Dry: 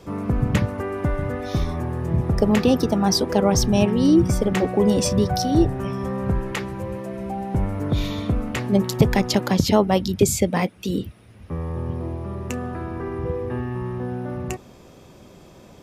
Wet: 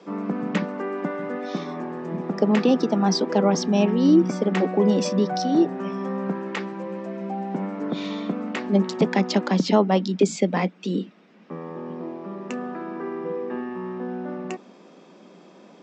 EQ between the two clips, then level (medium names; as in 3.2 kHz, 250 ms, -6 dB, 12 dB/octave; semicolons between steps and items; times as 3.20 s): Chebyshev band-pass 180–7800 Hz, order 5; distance through air 100 m; 0.0 dB